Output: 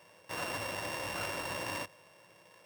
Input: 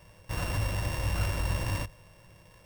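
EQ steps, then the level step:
high-pass filter 310 Hz 12 dB per octave
high-shelf EQ 8,700 Hz −4.5 dB
0.0 dB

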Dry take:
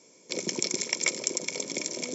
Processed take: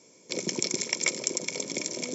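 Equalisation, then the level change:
low-shelf EQ 100 Hz +10 dB
0.0 dB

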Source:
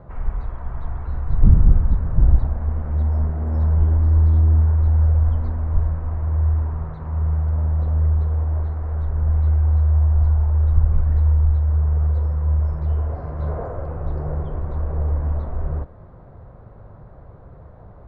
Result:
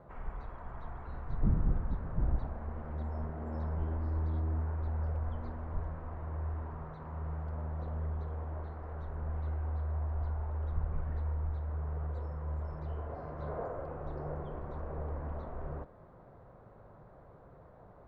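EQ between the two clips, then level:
parametric band 82 Hz −4 dB 0.77 octaves
low-shelf EQ 140 Hz −10.5 dB
−7.0 dB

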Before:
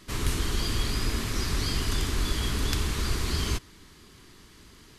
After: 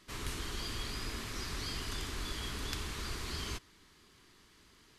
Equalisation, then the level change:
low-shelf EQ 380 Hz −7 dB
high-shelf EQ 6,700 Hz −4.5 dB
−7.0 dB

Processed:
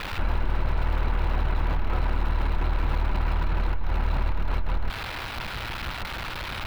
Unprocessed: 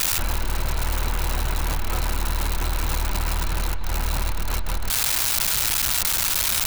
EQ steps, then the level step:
high-frequency loss of the air 400 metres
0.0 dB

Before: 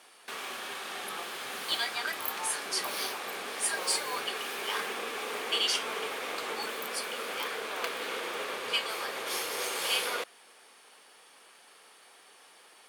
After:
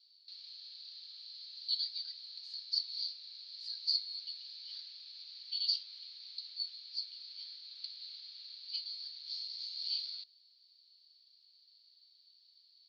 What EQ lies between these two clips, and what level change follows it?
flat-topped band-pass 4,400 Hz, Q 7.1
high-frequency loss of the air 120 metres
+8.5 dB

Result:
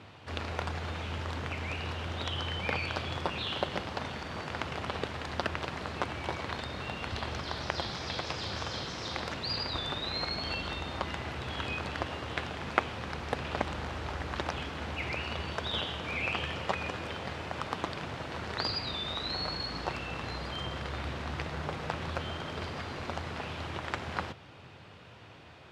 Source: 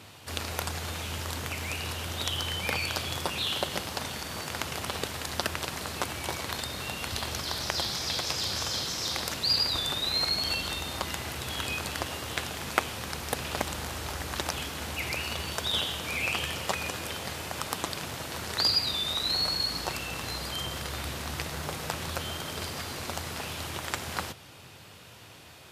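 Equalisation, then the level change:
Bessel low-pass filter 2,400 Hz, order 2
0.0 dB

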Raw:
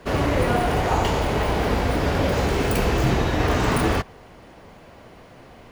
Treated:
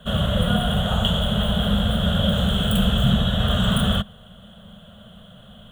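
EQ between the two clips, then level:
drawn EQ curve 140 Hz 0 dB, 210 Hz +9 dB, 300 Hz −25 dB, 610 Hz −2 dB, 900 Hz −15 dB, 1,400 Hz 0 dB, 2,300 Hz −20 dB, 3,300 Hz +15 dB, 4,900 Hz −27 dB, 7,900 Hz −2 dB
+2.0 dB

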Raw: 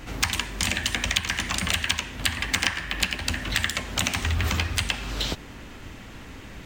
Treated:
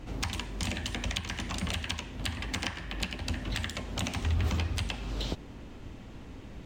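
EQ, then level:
low-pass filter 2,600 Hz 6 dB per octave
parametric band 1,700 Hz −8.5 dB 1.6 octaves
−2.5 dB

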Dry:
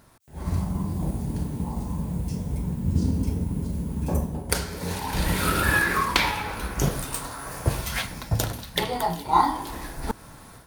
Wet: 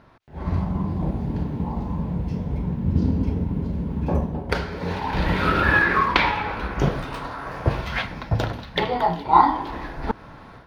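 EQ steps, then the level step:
high-frequency loss of the air 300 metres
low-shelf EQ 250 Hz −5 dB
+6.5 dB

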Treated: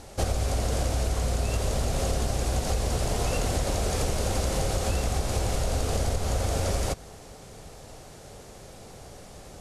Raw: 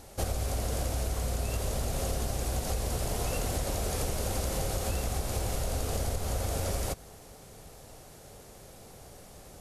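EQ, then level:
low-pass filter 8,800 Hz 12 dB per octave
+5.0 dB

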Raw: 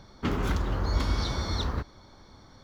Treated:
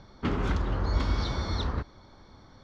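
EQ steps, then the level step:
high-frequency loss of the air 92 metres
0.0 dB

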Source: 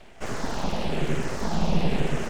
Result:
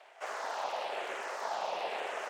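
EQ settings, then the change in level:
high-pass filter 610 Hz 24 dB per octave
high-shelf EQ 2,500 Hz −10.5 dB
0.0 dB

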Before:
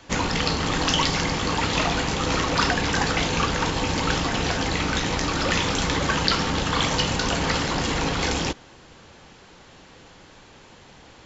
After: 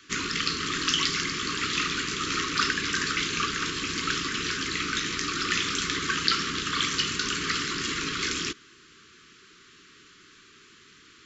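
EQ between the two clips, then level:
elliptic band-stop filter 400–1,200 Hz, stop band 60 dB
low-shelf EQ 94 Hz −8 dB
low-shelf EQ 240 Hz −11 dB
−1.0 dB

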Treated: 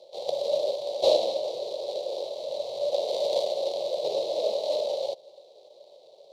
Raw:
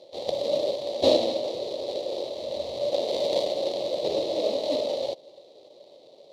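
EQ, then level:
high-pass filter 200 Hz 12 dB per octave
phaser with its sweep stopped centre 660 Hz, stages 4
0.0 dB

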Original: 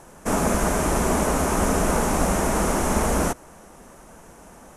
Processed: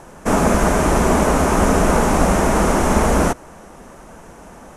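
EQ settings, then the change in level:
high-shelf EQ 7,400 Hz −9.5 dB
+6.5 dB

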